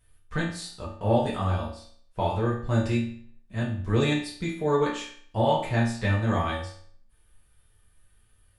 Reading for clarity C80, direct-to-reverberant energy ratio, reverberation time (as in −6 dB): 9.0 dB, −6.5 dB, 0.55 s